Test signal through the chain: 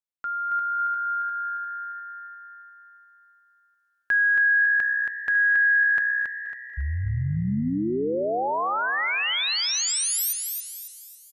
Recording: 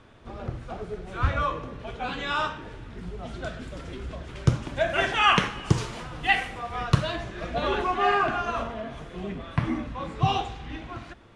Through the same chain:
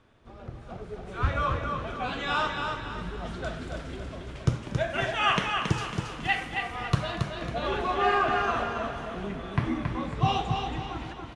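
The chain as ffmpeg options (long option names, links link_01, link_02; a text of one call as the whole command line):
ffmpeg -i in.wav -filter_complex "[0:a]asplit=2[link_01][link_02];[link_02]asplit=6[link_03][link_04][link_05][link_06][link_07][link_08];[link_03]adelay=239,afreqshift=63,volume=-18dB[link_09];[link_04]adelay=478,afreqshift=126,volume=-22.2dB[link_10];[link_05]adelay=717,afreqshift=189,volume=-26.3dB[link_11];[link_06]adelay=956,afreqshift=252,volume=-30.5dB[link_12];[link_07]adelay=1195,afreqshift=315,volume=-34.6dB[link_13];[link_08]adelay=1434,afreqshift=378,volume=-38.8dB[link_14];[link_09][link_10][link_11][link_12][link_13][link_14]amix=inputs=6:normalize=0[link_15];[link_01][link_15]amix=inputs=2:normalize=0,dynaudnorm=framelen=390:gausssize=5:maxgain=9dB,asplit=2[link_16][link_17];[link_17]aecho=0:1:275|550|825|1100|1375:0.562|0.219|0.0855|0.0334|0.013[link_18];[link_16][link_18]amix=inputs=2:normalize=0,volume=-8.5dB" out.wav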